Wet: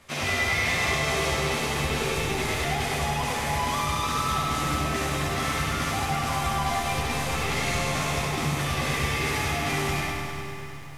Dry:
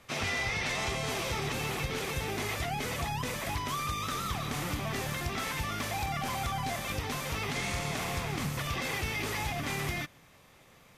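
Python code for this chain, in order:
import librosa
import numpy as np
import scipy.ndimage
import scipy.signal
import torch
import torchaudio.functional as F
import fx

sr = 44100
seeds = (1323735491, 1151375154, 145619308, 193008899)

p1 = fx.cvsd(x, sr, bps=64000)
p2 = p1 + fx.room_early_taps(p1, sr, ms=(13, 69), db=(-4.5, -3.0), dry=0)
p3 = fx.rev_freeverb(p2, sr, rt60_s=3.4, hf_ratio=0.55, predelay_ms=55, drr_db=4.5)
p4 = fx.echo_crushed(p3, sr, ms=99, feedback_pct=80, bits=10, wet_db=-8)
y = F.gain(torch.from_numpy(p4), 1.5).numpy()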